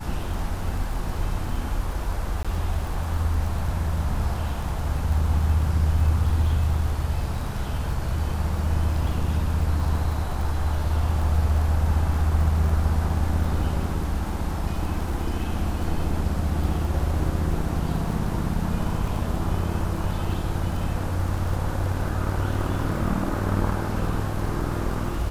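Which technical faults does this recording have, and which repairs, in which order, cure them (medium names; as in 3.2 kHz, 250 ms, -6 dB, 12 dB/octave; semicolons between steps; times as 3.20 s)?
crackle 37 per s -31 dBFS
2.43–2.45 s: dropout 16 ms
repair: de-click; interpolate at 2.43 s, 16 ms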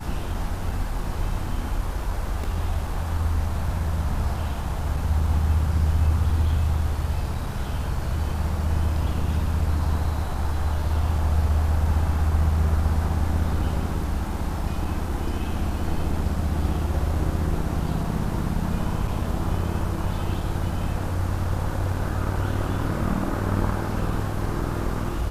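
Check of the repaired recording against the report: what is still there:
nothing left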